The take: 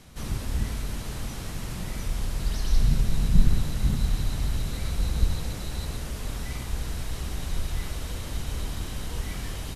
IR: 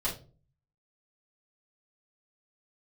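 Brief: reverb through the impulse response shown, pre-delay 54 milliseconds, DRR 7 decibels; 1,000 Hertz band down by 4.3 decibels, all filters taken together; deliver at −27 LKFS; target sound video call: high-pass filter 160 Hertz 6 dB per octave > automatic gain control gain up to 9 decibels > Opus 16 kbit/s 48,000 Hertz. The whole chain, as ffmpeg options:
-filter_complex "[0:a]equalizer=frequency=1000:width_type=o:gain=-5.5,asplit=2[link_01][link_02];[1:a]atrim=start_sample=2205,adelay=54[link_03];[link_02][link_03]afir=irnorm=-1:irlink=0,volume=-13dB[link_04];[link_01][link_04]amix=inputs=2:normalize=0,highpass=frequency=160:poles=1,dynaudnorm=maxgain=9dB,volume=8dB" -ar 48000 -c:a libopus -b:a 16k

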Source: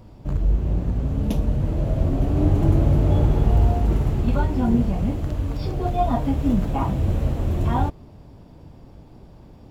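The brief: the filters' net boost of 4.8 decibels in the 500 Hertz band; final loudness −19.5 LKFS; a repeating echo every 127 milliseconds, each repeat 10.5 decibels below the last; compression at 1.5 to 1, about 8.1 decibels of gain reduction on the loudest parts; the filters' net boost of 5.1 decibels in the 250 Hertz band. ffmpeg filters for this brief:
ffmpeg -i in.wav -af "equalizer=frequency=250:width_type=o:gain=5,equalizer=frequency=500:width_type=o:gain=5,acompressor=threshold=-34dB:ratio=1.5,aecho=1:1:127|254|381:0.299|0.0896|0.0269,volume=7dB" out.wav

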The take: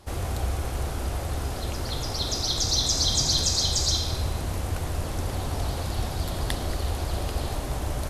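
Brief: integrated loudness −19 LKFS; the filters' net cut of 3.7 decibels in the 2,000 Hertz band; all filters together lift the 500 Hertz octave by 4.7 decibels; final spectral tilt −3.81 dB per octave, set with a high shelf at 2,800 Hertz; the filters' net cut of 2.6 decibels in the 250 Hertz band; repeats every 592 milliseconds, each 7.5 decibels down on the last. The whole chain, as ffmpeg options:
ffmpeg -i in.wav -af "equalizer=frequency=250:width_type=o:gain=-7,equalizer=frequency=500:width_type=o:gain=8,equalizer=frequency=2000:width_type=o:gain=-3.5,highshelf=frequency=2800:gain=-4.5,aecho=1:1:592|1184|1776|2368|2960:0.422|0.177|0.0744|0.0312|0.0131,volume=8.5dB" out.wav

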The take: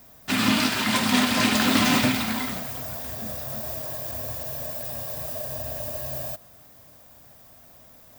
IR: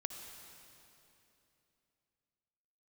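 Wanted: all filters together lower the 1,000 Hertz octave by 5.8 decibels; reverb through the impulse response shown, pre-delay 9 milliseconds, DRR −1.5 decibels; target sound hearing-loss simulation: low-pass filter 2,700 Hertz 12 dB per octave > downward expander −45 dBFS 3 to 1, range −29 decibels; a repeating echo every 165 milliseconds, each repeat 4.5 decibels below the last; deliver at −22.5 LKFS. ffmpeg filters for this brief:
-filter_complex "[0:a]equalizer=frequency=1000:width_type=o:gain=-7.5,aecho=1:1:165|330|495|660|825|990|1155|1320|1485:0.596|0.357|0.214|0.129|0.0772|0.0463|0.0278|0.0167|0.01,asplit=2[link_01][link_02];[1:a]atrim=start_sample=2205,adelay=9[link_03];[link_02][link_03]afir=irnorm=-1:irlink=0,volume=2.5dB[link_04];[link_01][link_04]amix=inputs=2:normalize=0,lowpass=2700,agate=range=-29dB:threshold=-45dB:ratio=3,volume=-3dB"

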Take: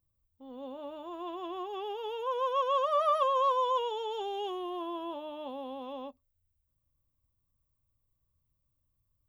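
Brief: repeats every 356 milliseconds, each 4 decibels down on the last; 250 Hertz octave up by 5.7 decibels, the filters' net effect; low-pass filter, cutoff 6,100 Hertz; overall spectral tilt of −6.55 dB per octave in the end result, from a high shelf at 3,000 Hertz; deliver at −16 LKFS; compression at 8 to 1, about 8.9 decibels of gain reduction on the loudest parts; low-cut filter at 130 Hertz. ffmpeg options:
ffmpeg -i in.wav -af "highpass=130,lowpass=6100,equalizer=frequency=250:width_type=o:gain=8.5,highshelf=frequency=3000:gain=7.5,acompressor=threshold=-31dB:ratio=8,aecho=1:1:356|712|1068|1424|1780|2136|2492|2848|3204:0.631|0.398|0.25|0.158|0.0994|0.0626|0.0394|0.0249|0.0157,volume=18.5dB" out.wav

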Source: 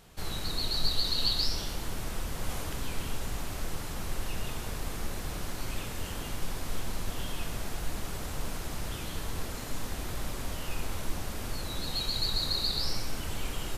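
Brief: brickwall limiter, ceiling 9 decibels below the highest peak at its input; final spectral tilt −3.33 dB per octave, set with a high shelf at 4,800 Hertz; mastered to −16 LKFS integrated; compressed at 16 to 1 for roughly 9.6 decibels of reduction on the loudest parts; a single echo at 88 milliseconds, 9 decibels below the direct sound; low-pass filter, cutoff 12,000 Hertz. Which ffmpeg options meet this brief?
ffmpeg -i in.wav -af "lowpass=12000,highshelf=frequency=4800:gain=5,acompressor=threshold=-29dB:ratio=16,alimiter=level_in=5.5dB:limit=-24dB:level=0:latency=1,volume=-5.5dB,aecho=1:1:88:0.355,volume=24dB" out.wav

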